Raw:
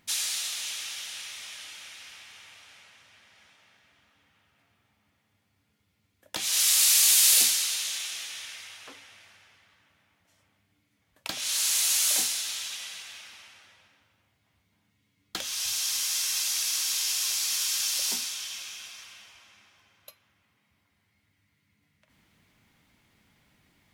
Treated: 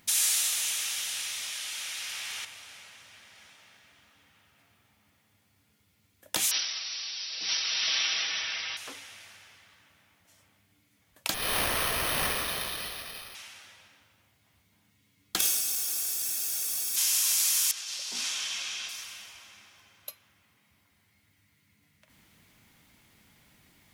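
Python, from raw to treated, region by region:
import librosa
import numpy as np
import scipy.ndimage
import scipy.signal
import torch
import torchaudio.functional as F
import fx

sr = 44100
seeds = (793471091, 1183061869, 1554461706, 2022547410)

y = fx.chain(x, sr, fx.low_shelf(hz=400.0, db=-7.0),
    fx.env_flatten(amount_pct=100), at=(1.52, 2.45))
y = fx.chain(y, sr, fx.over_compress(threshold_db=-27.0, ratio=-0.5),
    fx.brickwall_lowpass(high_hz=5900.0),
    fx.comb(ms=6.2, depth=0.54), at=(6.51, 8.77))
y = fx.chain(y, sr, fx.lower_of_two(delay_ms=1.6),
    fx.high_shelf(hz=5600.0, db=-4.5),
    fx.resample_bad(factor=6, down='none', up='hold'), at=(11.34, 13.35))
y = fx.chain(y, sr, fx.lower_of_two(delay_ms=2.7),
    fx.high_shelf(hz=2700.0, db=11.0),
    fx.notch_comb(f0_hz=1000.0), at=(15.39, 16.96))
y = fx.chain(y, sr, fx.lowpass(hz=5100.0, slope=12),
    fx.low_shelf(hz=130.0, db=-6.0),
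    fx.over_compress(threshold_db=-37.0, ratio=-0.5), at=(17.71, 18.89))
y = fx.dynamic_eq(y, sr, hz=4400.0, q=1.4, threshold_db=-40.0, ratio=4.0, max_db=-5)
y = fx.over_compress(y, sr, threshold_db=-32.0, ratio=-1.0)
y = fx.high_shelf(y, sr, hz=6400.0, db=8.0)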